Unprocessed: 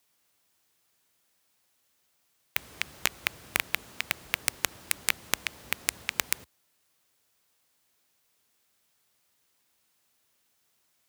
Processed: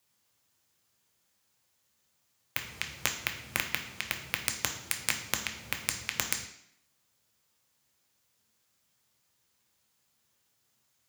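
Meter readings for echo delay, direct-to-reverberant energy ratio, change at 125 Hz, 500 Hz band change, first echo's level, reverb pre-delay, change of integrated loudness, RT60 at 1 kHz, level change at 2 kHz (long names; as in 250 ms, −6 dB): no echo audible, 4.0 dB, +4.0 dB, −2.0 dB, no echo audible, 3 ms, −2.0 dB, 0.65 s, −2.5 dB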